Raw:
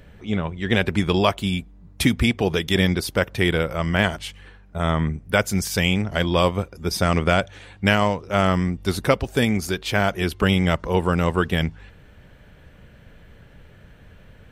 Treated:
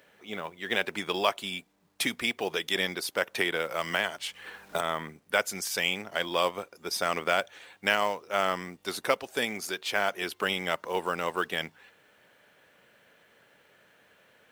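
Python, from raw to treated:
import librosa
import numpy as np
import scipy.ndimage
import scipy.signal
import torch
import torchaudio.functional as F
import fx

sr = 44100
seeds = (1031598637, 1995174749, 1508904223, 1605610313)

y = scipy.signal.sosfilt(scipy.signal.bessel(2, 560.0, 'highpass', norm='mag', fs=sr, output='sos'), x)
y = fx.quant_companded(y, sr, bits=6)
y = fx.band_squash(y, sr, depth_pct=100, at=(3.35, 4.81))
y = F.gain(torch.from_numpy(y), -4.5).numpy()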